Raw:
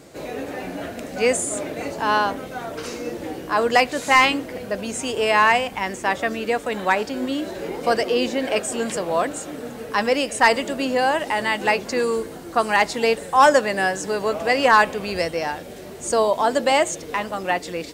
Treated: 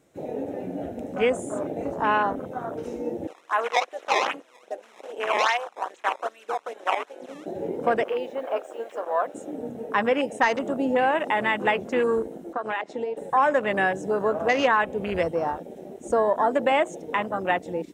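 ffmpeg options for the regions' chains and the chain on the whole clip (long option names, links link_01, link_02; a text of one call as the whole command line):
ffmpeg -i in.wav -filter_complex "[0:a]asettb=1/sr,asplit=3[link_01][link_02][link_03];[link_01]atrim=end=3.274[link_04];[link_02]atrim=start=3.27:end=7.46,asetpts=PTS-STARTPTS,afade=type=in:duration=0.004:curve=qsin,afade=type=out:start_time=4.186:duration=0.004:curve=qsin,acrusher=samples=17:mix=1:aa=0.000001:lfo=1:lforange=27.2:lforate=2.5,highpass=750,lowpass=7800[link_05];[link_03]atrim=start=7.456[link_06];[link_04][link_05]acrossfade=duration=0.004:curve1=hsin:curve2=qsin[link_07];[link_07][link_06]acrossfade=duration=0.004:curve1=qsin:curve2=hsin,asettb=1/sr,asplit=3[link_08][link_09][link_10];[link_08]atrim=end=8.044[link_11];[link_09]atrim=start=8.04:end=9.35,asetpts=PTS-STARTPTS,afade=type=in:duration=0.004:curve=qsin,afade=type=out:start_time=1.306:duration=0.004:curve=qsin,highpass=630,lowpass=4000,acrusher=bits=6:mix=0:aa=0.5[link_12];[link_10]atrim=start=9.346[link_13];[link_11][link_12]acrossfade=duration=0.004:curve1=hsin:curve2=qsin[link_14];[link_14][link_13]acrossfade=duration=0.004:curve1=qsin:curve2=hsin,asettb=1/sr,asplit=3[link_15][link_16][link_17];[link_15]atrim=end=12.534[link_18];[link_16]atrim=start=12.53:end=13.17,asetpts=PTS-STARTPTS,afade=type=in:duration=0.004:curve=qsin,afade=type=out:start_time=0.636:duration=0.004:curve=qsin,acompressor=threshold=-22dB:ratio=16:attack=3.2:release=140:knee=1:detection=peak,highpass=290,lowpass=5100[link_19];[link_17]atrim=start=13.166[link_20];[link_18][link_19]acrossfade=duration=0.004:curve1=hsin:curve2=qsin[link_21];[link_21][link_20]acrossfade=duration=0.004:curve1=qsin:curve2=hsin,afwtdn=0.0447,equalizer=frequency=4600:width_type=o:width=0.2:gain=-12.5,acompressor=threshold=-17dB:ratio=6" out.wav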